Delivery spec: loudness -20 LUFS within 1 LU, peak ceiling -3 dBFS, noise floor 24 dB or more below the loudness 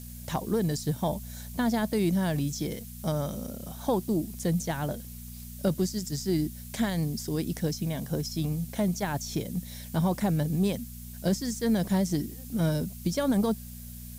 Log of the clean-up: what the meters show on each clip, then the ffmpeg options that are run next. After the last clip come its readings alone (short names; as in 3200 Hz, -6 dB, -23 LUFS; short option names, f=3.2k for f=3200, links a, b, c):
hum 60 Hz; harmonics up to 240 Hz; hum level -41 dBFS; noise floor -42 dBFS; noise floor target -54 dBFS; loudness -29.5 LUFS; peak -14.5 dBFS; loudness target -20.0 LUFS
-> -af "bandreject=f=60:t=h:w=4,bandreject=f=120:t=h:w=4,bandreject=f=180:t=h:w=4,bandreject=f=240:t=h:w=4"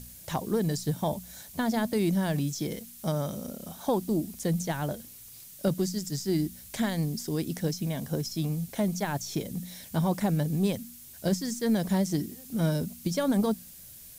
hum none; noise floor -48 dBFS; noise floor target -54 dBFS
-> -af "afftdn=nr=6:nf=-48"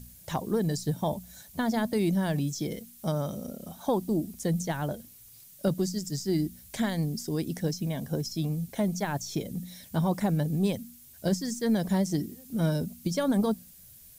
noise floor -52 dBFS; noise floor target -54 dBFS
-> -af "afftdn=nr=6:nf=-52"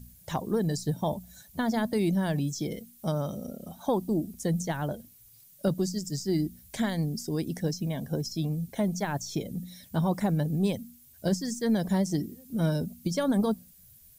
noise floor -56 dBFS; loudness -30.0 LUFS; peak -15.5 dBFS; loudness target -20.0 LUFS
-> -af "volume=10dB"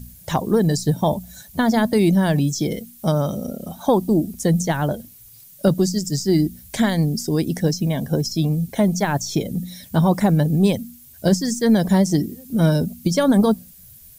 loudness -20.0 LUFS; peak -5.5 dBFS; noise floor -46 dBFS